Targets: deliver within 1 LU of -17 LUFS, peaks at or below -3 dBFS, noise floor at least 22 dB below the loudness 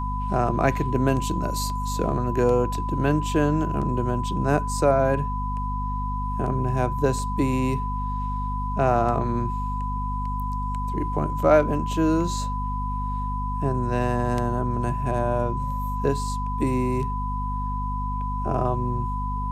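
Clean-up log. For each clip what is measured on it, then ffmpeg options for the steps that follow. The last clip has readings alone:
hum 50 Hz; highest harmonic 250 Hz; hum level -26 dBFS; steady tone 1 kHz; tone level -29 dBFS; loudness -25.0 LUFS; peak level -5.5 dBFS; loudness target -17.0 LUFS
-> -af "bandreject=f=50:t=h:w=4,bandreject=f=100:t=h:w=4,bandreject=f=150:t=h:w=4,bandreject=f=200:t=h:w=4,bandreject=f=250:t=h:w=4"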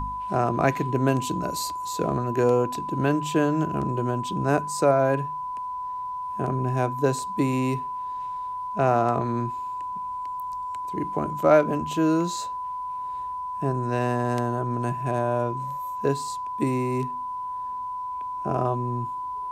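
hum not found; steady tone 1 kHz; tone level -29 dBFS
-> -af "bandreject=f=1000:w=30"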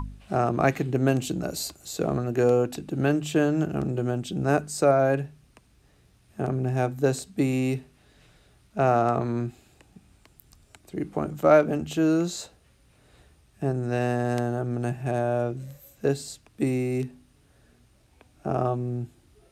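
steady tone not found; loudness -26.0 LUFS; peak level -7.0 dBFS; loudness target -17.0 LUFS
-> -af "volume=2.82,alimiter=limit=0.708:level=0:latency=1"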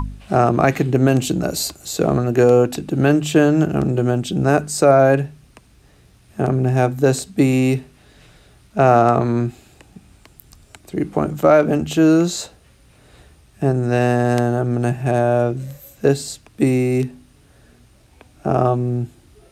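loudness -17.5 LUFS; peak level -3.0 dBFS; noise floor -52 dBFS

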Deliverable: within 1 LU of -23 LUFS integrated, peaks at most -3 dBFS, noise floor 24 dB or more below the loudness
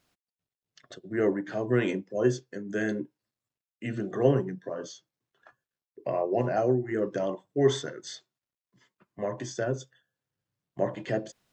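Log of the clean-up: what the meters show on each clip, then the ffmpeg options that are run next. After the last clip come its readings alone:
loudness -29.5 LUFS; peak level -10.0 dBFS; loudness target -23.0 LUFS
-> -af "volume=2.11"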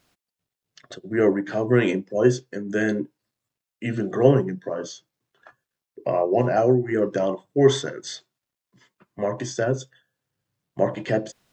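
loudness -23.0 LUFS; peak level -3.5 dBFS; noise floor -88 dBFS

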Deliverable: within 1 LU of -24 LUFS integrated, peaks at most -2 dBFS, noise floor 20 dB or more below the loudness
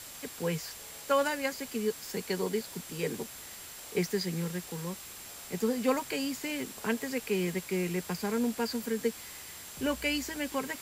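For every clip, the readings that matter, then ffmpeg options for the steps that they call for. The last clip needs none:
steady tone 7.5 kHz; tone level -52 dBFS; noise floor -46 dBFS; noise floor target -54 dBFS; loudness -33.5 LUFS; peak level -14.0 dBFS; loudness target -24.0 LUFS
-> -af "bandreject=f=7500:w=30"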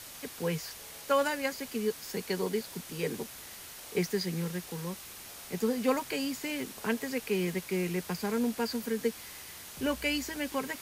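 steady tone not found; noise floor -47 dBFS; noise floor target -53 dBFS
-> -af "afftdn=nr=6:nf=-47"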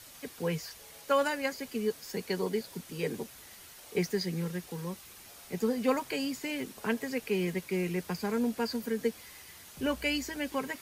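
noise floor -52 dBFS; noise floor target -53 dBFS
-> -af "afftdn=nr=6:nf=-52"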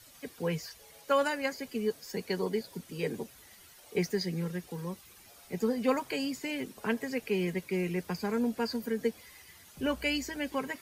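noise floor -56 dBFS; loudness -33.5 LUFS; peak level -14.5 dBFS; loudness target -24.0 LUFS
-> -af "volume=2.99"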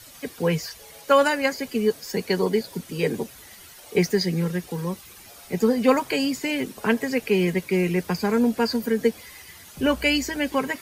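loudness -24.0 LUFS; peak level -5.0 dBFS; noise floor -46 dBFS

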